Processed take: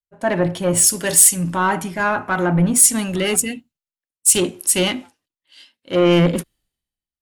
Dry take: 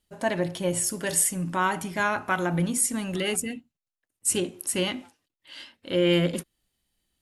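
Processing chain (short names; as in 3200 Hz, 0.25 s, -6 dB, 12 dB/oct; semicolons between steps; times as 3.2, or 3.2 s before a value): in parallel at +2 dB: limiter -17.5 dBFS, peak gain reduction 6.5 dB; on the sum: soft clip -15 dBFS, distortion -14 dB; three-band expander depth 100%; gain +3.5 dB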